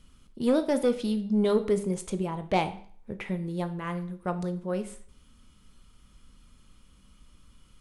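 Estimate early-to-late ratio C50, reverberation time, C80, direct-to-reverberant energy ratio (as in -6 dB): 13.5 dB, 0.50 s, 17.0 dB, 8.5 dB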